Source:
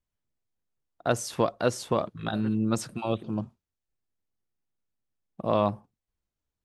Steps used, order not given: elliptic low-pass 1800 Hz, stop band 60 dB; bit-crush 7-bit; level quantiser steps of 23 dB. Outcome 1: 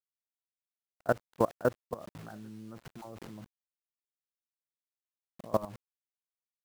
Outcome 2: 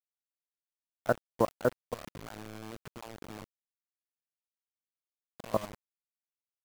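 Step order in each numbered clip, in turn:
elliptic low-pass > bit-crush > level quantiser; elliptic low-pass > level quantiser > bit-crush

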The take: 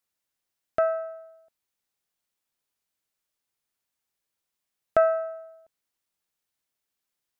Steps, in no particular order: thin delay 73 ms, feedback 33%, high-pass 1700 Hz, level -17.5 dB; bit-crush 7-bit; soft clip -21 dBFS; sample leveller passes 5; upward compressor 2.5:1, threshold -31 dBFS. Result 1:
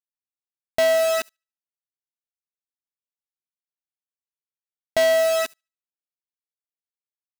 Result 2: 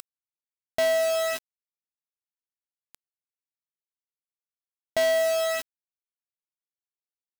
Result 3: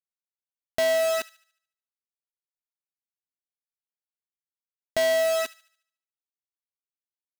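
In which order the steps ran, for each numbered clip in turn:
soft clip > bit-crush > upward compressor > thin delay > sample leveller; upward compressor > thin delay > soft clip > bit-crush > sample leveller; bit-crush > sample leveller > soft clip > thin delay > upward compressor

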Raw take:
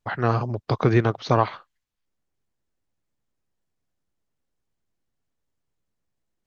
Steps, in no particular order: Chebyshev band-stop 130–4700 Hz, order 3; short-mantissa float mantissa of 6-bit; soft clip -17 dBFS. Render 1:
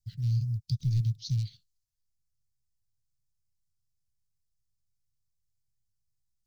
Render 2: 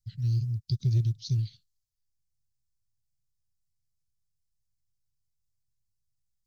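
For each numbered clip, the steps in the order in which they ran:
soft clip > short-mantissa float > Chebyshev band-stop; Chebyshev band-stop > soft clip > short-mantissa float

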